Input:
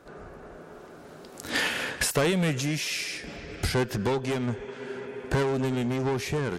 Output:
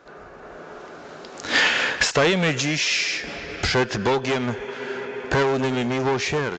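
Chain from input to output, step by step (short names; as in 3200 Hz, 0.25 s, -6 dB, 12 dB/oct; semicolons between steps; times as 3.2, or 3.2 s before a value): AGC gain up to 5.5 dB; overdrive pedal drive 9 dB, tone 5800 Hz, clips at -6 dBFS; downsampling 16000 Hz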